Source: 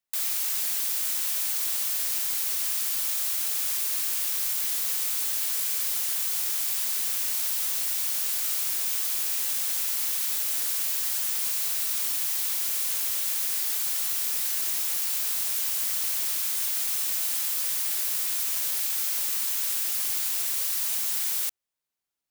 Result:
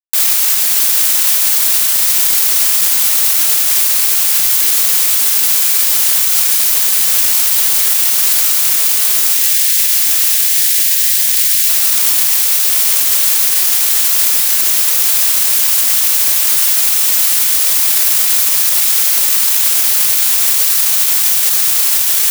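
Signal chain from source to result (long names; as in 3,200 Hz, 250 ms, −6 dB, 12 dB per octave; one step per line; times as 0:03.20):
0:09.31–0:11.69: elliptic high-pass filter 1,700 Hz, stop band 50 dB
log-companded quantiser 6 bits
amplitude tremolo 0.83 Hz, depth 77%
feedback delay with all-pass diffusion 811 ms, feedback 68%, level −7.5 dB
boost into a limiter +30 dB
level −1 dB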